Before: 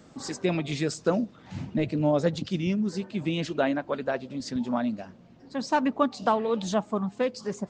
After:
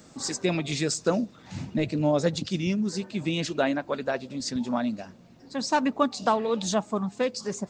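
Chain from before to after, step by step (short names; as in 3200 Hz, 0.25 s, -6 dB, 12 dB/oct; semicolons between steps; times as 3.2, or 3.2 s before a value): high shelf 4500 Hz +11.5 dB; notch 3100 Hz, Q 19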